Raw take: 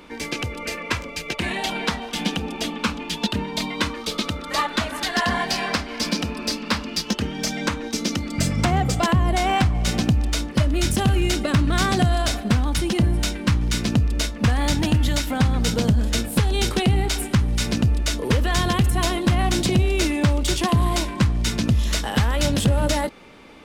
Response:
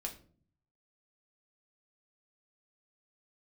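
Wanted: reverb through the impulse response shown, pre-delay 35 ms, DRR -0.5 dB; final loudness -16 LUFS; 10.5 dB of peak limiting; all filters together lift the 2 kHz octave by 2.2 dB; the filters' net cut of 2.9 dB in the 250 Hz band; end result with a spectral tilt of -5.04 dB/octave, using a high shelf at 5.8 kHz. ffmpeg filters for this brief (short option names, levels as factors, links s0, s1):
-filter_complex "[0:a]equalizer=f=250:t=o:g=-4,equalizer=f=2000:t=o:g=3.5,highshelf=f=5800:g=-5.5,alimiter=limit=0.112:level=0:latency=1,asplit=2[s0][s1];[1:a]atrim=start_sample=2205,adelay=35[s2];[s1][s2]afir=irnorm=-1:irlink=0,volume=1.19[s3];[s0][s3]amix=inputs=2:normalize=0,volume=2.24"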